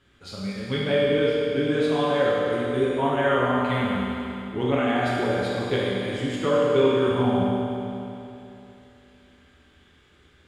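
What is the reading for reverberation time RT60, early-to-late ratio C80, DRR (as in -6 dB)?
2.9 s, -1.5 dB, -7.0 dB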